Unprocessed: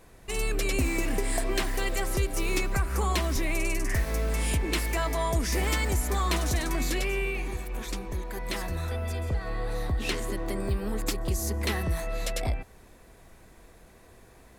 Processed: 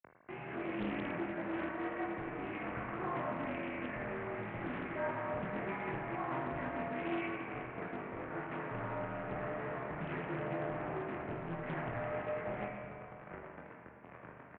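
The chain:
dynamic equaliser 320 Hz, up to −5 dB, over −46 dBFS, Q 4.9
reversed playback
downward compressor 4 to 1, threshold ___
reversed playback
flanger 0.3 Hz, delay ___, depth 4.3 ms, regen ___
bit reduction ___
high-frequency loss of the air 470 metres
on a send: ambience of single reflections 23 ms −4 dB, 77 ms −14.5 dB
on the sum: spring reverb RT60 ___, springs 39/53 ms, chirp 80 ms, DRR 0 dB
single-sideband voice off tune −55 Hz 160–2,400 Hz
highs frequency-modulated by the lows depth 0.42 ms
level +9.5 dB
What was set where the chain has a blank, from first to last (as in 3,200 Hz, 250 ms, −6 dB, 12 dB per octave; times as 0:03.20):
−44 dBFS, 9.2 ms, 0%, 8 bits, 2.3 s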